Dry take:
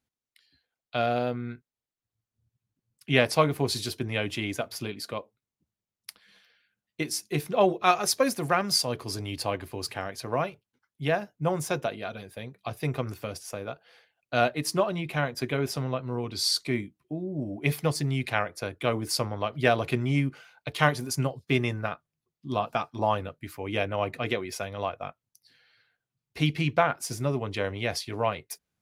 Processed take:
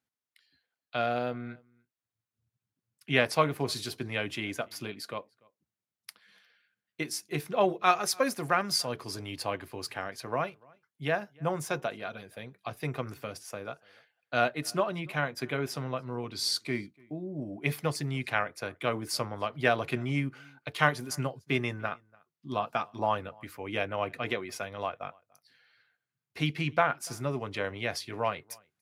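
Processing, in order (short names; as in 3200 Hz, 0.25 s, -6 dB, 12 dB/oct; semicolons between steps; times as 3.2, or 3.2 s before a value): HPF 100 Hz; bell 1500 Hz +4.5 dB 1.4 oct; outdoor echo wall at 50 m, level -27 dB; gain -4.5 dB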